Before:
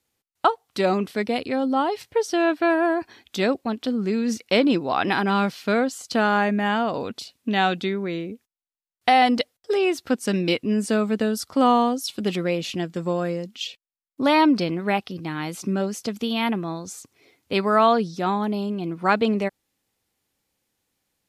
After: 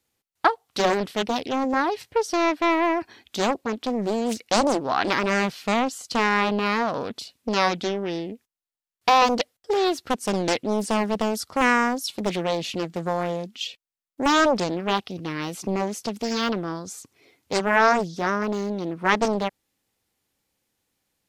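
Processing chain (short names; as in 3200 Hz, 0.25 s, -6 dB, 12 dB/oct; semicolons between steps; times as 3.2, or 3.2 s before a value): 0.65–1.23 dynamic EQ 3400 Hz, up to +5 dB, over -41 dBFS, Q 0.7; Doppler distortion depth 0.93 ms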